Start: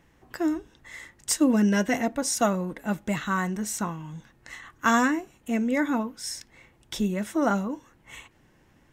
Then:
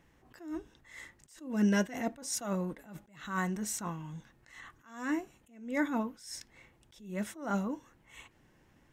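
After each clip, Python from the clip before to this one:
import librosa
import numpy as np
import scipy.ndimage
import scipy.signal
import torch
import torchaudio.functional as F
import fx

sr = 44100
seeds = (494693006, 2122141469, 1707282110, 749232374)

y = fx.attack_slew(x, sr, db_per_s=110.0)
y = y * librosa.db_to_amplitude(-4.5)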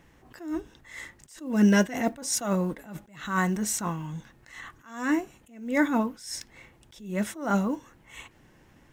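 y = fx.block_float(x, sr, bits=7)
y = y * librosa.db_to_amplitude(7.5)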